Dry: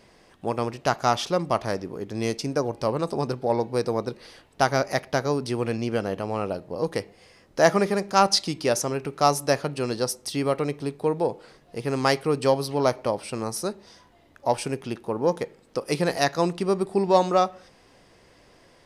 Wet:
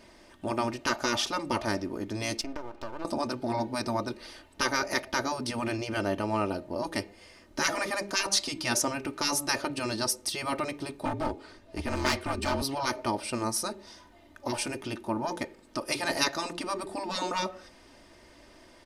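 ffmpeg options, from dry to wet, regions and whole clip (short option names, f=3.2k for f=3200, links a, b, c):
-filter_complex "[0:a]asettb=1/sr,asplit=3[a][b][c];[a]atrim=end=2.414[d];[b]atrim=start=2.41:end=3.05,asetpts=PTS-STARTPTS,afade=t=in:d=0.004:c=qsin,afade=t=out:st=0.636:d=0.004:c=qsin,highpass=260,lowpass=3.2k,acompressor=threshold=-31dB:ratio=10:attack=3.2:release=140:knee=1:detection=peak,aeval=exprs='max(val(0),0)':c=same[e];[c]atrim=start=3.046[f];[d][e]acrossfade=d=0.004:c1=hsin:c2=qsin[g];[g][f]acrossfade=d=0.004:c1=qsin:c2=hsin,asettb=1/sr,asplit=3[h][i][j];[h]atrim=end=11.054[k];[i]atrim=start=11.05:end=12.62,asetpts=PTS-STARTPTS,afade=t=in:d=0.004:c=qsin,afade=t=out:st=1.566:d=0.004:c=qsin,highshelf=f=10k:g=-8.5,afreqshift=-46,aeval=exprs='clip(val(0),-1,0.0422)':c=same[l];[j]atrim=start=12.616[m];[k][l]acrossfade=d=0.004:c1=hsin:c2=qsin[n];[n][m]acrossfade=d=0.004:c1=qsin:c2=hsin,bandreject=f=540:w=15,afftfilt=real='re*lt(hypot(re,im),0.251)':imag='im*lt(hypot(re,im),0.251)':win_size=1024:overlap=0.75,aecho=1:1:3.3:0.62"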